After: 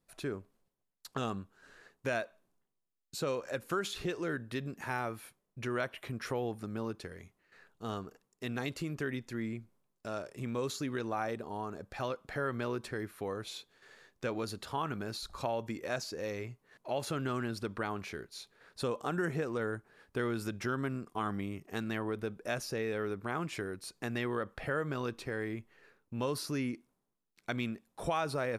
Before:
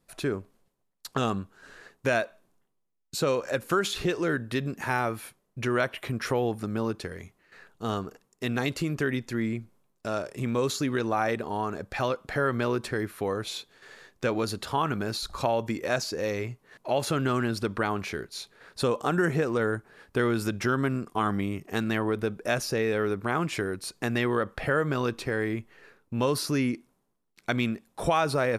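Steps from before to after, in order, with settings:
0:11.25–0:12.00: dynamic equaliser 2,100 Hz, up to −5 dB, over −45 dBFS, Q 1.1
level −8.5 dB

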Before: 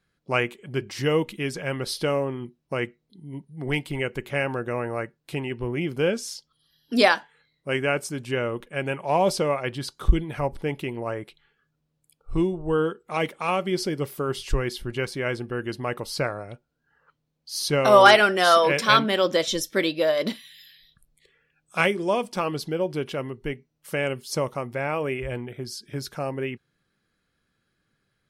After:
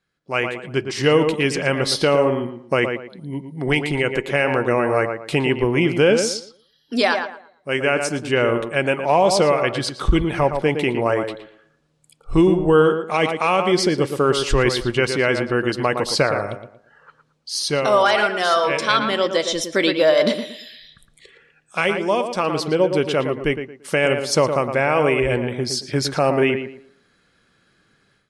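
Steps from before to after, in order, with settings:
low-pass filter 9,500 Hz 24 dB per octave
low-shelf EQ 170 Hz −7 dB
tape delay 114 ms, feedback 31%, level −7 dB, low-pass 1,900 Hz
automatic gain control gain up to 15 dB
boost into a limiter +4.5 dB
level −5.5 dB

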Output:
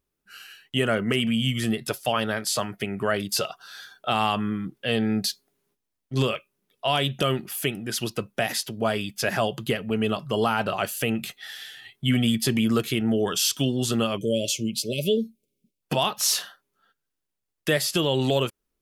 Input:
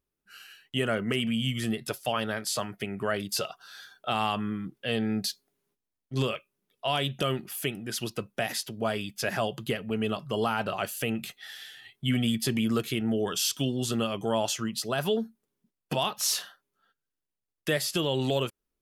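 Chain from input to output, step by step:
time-frequency box erased 0:14.18–0:15.82, 630–2,100 Hz
level +4.5 dB

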